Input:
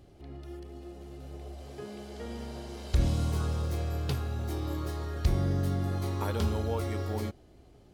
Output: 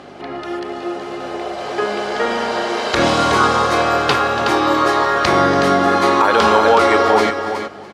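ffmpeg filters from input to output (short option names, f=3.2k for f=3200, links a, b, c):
-filter_complex "[0:a]asplit=2[a][b];[b]aecho=0:1:285:0.158[c];[a][c]amix=inputs=2:normalize=0,aeval=exprs='val(0)+0.00398*(sin(2*PI*50*n/s)+sin(2*PI*2*50*n/s)/2+sin(2*PI*3*50*n/s)/3+sin(2*PI*4*50*n/s)/4+sin(2*PI*5*50*n/s)/5)':c=same,highpass=350,lowpass=6.4k,equalizer=f=1.3k:w=0.7:g=10.5,asplit=2[d][e];[e]aecho=0:1:370:0.355[f];[d][f]amix=inputs=2:normalize=0,alimiter=level_in=21.5dB:limit=-1dB:release=50:level=0:latency=1,volume=-1dB"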